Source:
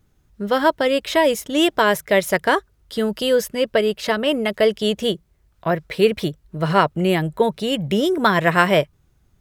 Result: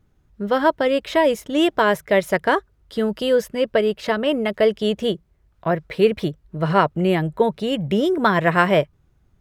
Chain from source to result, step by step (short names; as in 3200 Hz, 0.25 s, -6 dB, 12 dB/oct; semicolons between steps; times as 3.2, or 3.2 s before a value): high shelf 3500 Hz -9.5 dB